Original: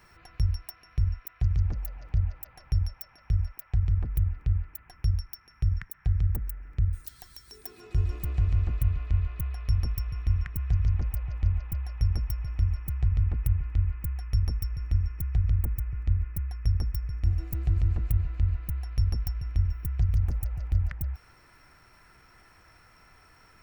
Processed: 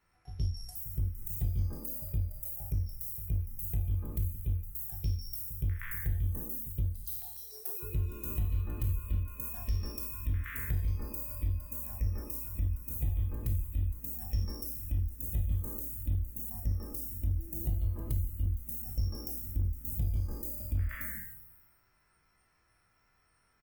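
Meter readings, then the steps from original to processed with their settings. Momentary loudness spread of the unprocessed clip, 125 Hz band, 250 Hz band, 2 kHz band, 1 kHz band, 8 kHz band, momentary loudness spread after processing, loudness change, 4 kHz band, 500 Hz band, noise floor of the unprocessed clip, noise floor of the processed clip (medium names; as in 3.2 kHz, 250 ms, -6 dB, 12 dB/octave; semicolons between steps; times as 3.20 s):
8 LU, -7.0 dB, -1.0 dB, 0.0 dB, -4.5 dB, no reading, 4 LU, -6.0 dB, -3.5 dB, +0.5 dB, -58 dBFS, -71 dBFS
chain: spectral sustain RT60 1.31 s; spectral noise reduction 18 dB; compression 2:1, threshold -33 dBFS, peak gain reduction 9 dB; pre-echo 119 ms -14 dB; hard clipper -24 dBFS, distortion -23 dB; on a send: delay 91 ms -23.5 dB; on the sum: Opus 32 kbps 48 kHz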